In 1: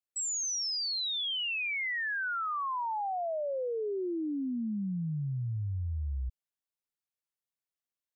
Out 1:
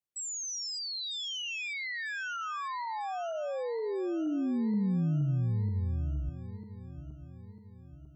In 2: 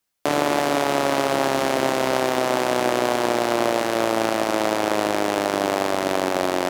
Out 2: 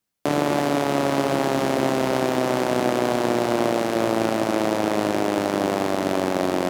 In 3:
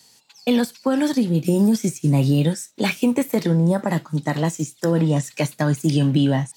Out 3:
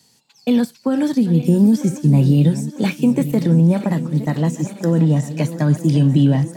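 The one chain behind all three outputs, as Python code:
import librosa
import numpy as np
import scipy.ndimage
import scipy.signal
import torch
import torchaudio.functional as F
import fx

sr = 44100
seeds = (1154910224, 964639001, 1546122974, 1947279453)

y = fx.reverse_delay_fb(x, sr, ms=474, feedback_pct=69, wet_db=-13.5)
y = fx.peak_eq(y, sr, hz=160.0, db=9.0, octaves=2.5)
y = F.gain(torch.from_numpy(y), -4.0).numpy()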